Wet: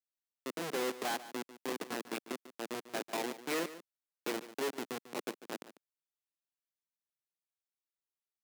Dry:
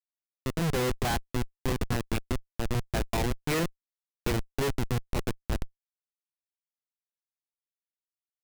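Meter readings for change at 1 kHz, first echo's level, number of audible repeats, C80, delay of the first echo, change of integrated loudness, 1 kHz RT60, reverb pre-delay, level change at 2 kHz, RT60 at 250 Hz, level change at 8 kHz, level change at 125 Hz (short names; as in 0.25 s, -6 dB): -5.5 dB, -15.0 dB, 1, none, 0.146 s, -7.5 dB, none, none, -5.5 dB, none, -5.5 dB, -26.5 dB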